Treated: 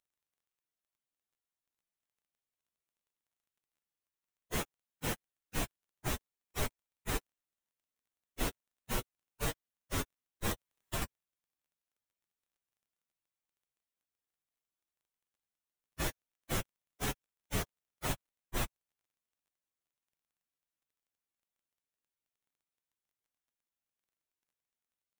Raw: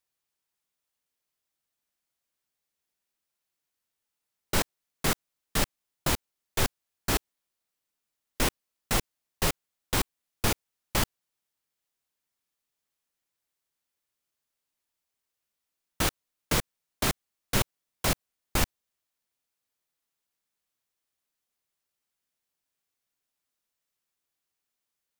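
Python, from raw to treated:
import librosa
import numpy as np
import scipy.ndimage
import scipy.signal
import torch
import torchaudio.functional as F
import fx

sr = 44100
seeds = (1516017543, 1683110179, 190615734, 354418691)

y = fx.partial_stretch(x, sr, pct=118)
y = fx.dmg_crackle(y, sr, seeds[0], per_s=21.0, level_db=-64.0)
y = fx.peak_eq(y, sr, hz=4700.0, db=-6.5, octaves=0.33)
y = fx.band_squash(y, sr, depth_pct=100, at=(10.51, 11.02))
y = y * librosa.db_to_amplitude(-3.5)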